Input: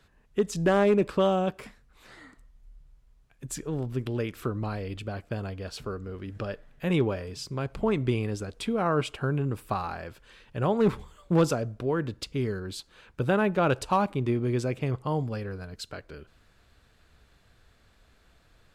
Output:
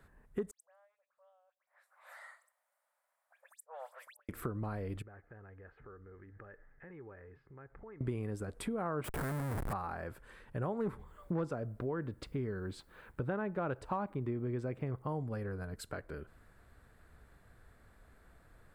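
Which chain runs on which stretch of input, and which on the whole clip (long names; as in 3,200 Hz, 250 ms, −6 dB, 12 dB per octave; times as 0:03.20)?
0:00.51–0:04.29: Butterworth high-pass 540 Hz 96 dB per octave + gate with flip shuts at −34 dBFS, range −42 dB + all-pass dispersion highs, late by 99 ms, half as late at 2,900 Hz
0:05.02–0:08.01: downward compressor 3 to 1, threshold −44 dBFS + transistor ladder low-pass 2,100 Hz, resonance 55% + comb filter 2.4 ms, depth 35%
0:09.04–0:09.73: upward compression, threshold −40 dBFS + comparator with hysteresis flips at −43 dBFS
0:10.98–0:15.09: low-pass filter 5,000 Hz + bit-depth reduction 12 bits, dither none
whole clip: flat-topped bell 4,100 Hz −11.5 dB; downward compressor 3 to 1, threshold −37 dBFS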